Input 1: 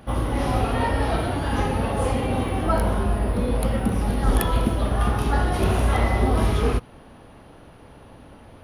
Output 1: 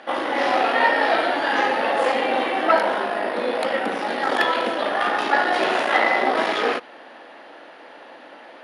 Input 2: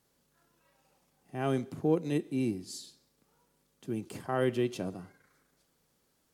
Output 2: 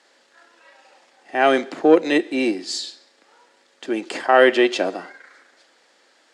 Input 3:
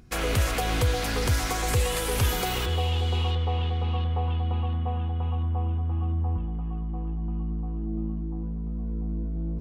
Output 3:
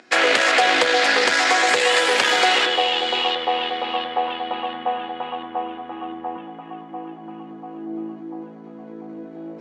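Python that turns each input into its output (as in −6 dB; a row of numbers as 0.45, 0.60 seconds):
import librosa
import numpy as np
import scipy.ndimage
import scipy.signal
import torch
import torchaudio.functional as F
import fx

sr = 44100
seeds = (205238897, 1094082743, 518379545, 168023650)

y = fx.cheby_harmonics(x, sr, harmonics=(4, 5), levels_db=(-12, -14), full_scale_db=-3.5)
y = fx.cabinet(y, sr, low_hz=360.0, low_slope=24, high_hz=6700.0, hz=(420.0, 1100.0, 1800.0, 6000.0), db=(-8, -4, 6, -6))
y = y * 10.0 ** (-22 / 20.0) / np.sqrt(np.mean(np.square(y)))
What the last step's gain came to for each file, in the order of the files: +2.5, +14.0, +7.5 decibels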